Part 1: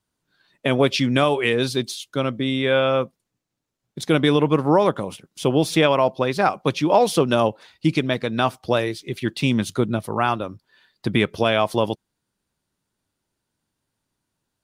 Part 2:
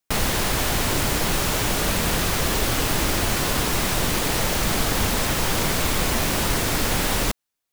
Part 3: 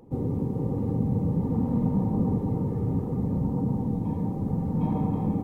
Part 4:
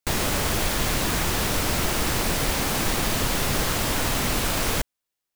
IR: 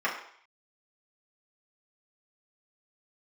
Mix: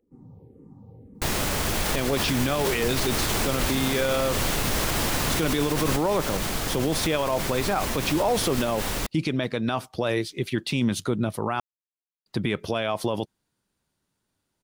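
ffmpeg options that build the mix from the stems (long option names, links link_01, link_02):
-filter_complex "[0:a]adelay=1300,volume=0.5dB,asplit=3[link_01][link_02][link_03];[link_01]atrim=end=11.6,asetpts=PTS-STARTPTS,afade=type=out:start_time=11.596:duration=0.004:curve=hsin[link_04];[link_02]atrim=start=11.6:end=12.26,asetpts=PTS-STARTPTS,volume=0[link_05];[link_03]atrim=start=12.26,asetpts=PTS-STARTPTS,afade=type=in:duration=0.004:curve=hsin[link_06];[link_04][link_05][link_06]concat=n=3:v=0:a=1[link_07];[1:a]adelay=1750,volume=-6dB[link_08];[2:a]asplit=2[link_09][link_10];[link_10]afreqshift=-1.9[link_11];[link_09][link_11]amix=inputs=2:normalize=1,volume=-17.5dB[link_12];[3:a]adelay=1150,volume=-1.5dB[link_13];[link_07][link_08][link_12][link_13]amix=inputs=4:normalize=0,alimiter=limit=-14.5dB:level=0:latency=1:release=39"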